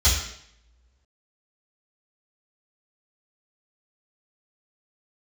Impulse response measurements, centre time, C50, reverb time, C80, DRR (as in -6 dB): 46 ms, 3.5 dB, 0.70 s, 6.5 dB, -12.5 dB